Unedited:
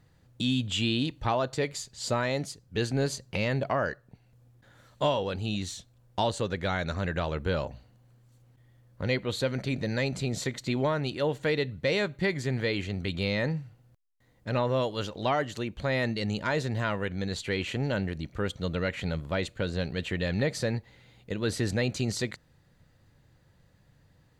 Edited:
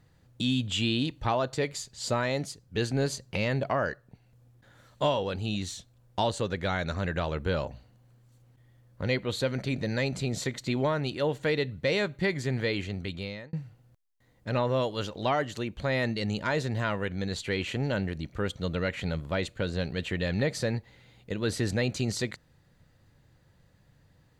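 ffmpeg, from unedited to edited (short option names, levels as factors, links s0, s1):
-filter_complex "[0:a]asplit=2[s0][s1];[s0]atrim=end=13.53,asetpts=PTS-STARTPTS,afade=t=out:st=12.57:d=0.96:c=qsin[s2];[s1]atrim=start=13.53,asetpts=PTS-STARTPTS,afade=t=in:d=0.004:c=hsin[s3];[s2][s3]concat=n=2:v=0:a=1"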